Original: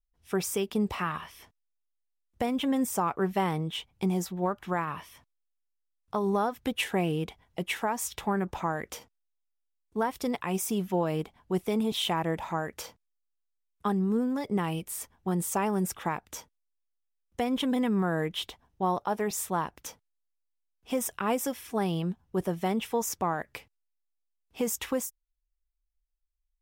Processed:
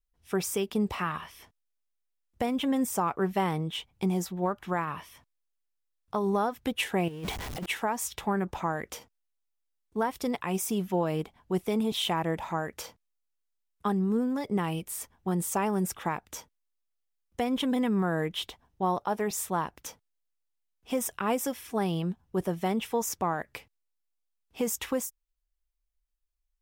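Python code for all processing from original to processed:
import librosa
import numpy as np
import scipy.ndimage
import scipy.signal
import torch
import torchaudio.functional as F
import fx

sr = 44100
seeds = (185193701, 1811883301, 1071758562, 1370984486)

y = fx.chain(x, sr, fx.zero_step(step_db=-36.0),
    fx.over_compress(threshold_db=-33.0, ratio=-0.5), at=(7.08, 7.66))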